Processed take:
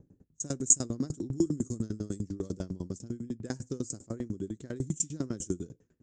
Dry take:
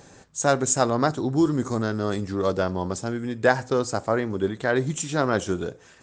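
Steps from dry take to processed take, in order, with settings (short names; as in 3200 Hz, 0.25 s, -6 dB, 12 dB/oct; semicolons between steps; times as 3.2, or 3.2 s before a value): low-pass opened by the level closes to 830 Hz, open at -21 dBFS; EQ curve 310 Hz 0 dB, 780 Hz -24 dB, 4000 Hz -14 dB, 7000 Hz +8 dB, 10000 Hz +4 dB; dB-ramp tremolo decaying 10 Hz, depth 25 dB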